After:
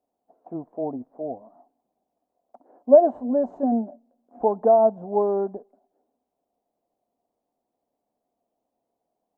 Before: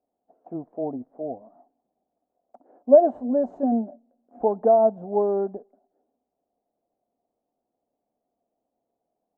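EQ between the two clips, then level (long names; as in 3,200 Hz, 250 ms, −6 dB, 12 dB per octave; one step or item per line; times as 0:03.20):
parametric band 1,000 Hz +5.5 dB 0.44 octaves
0.0 dB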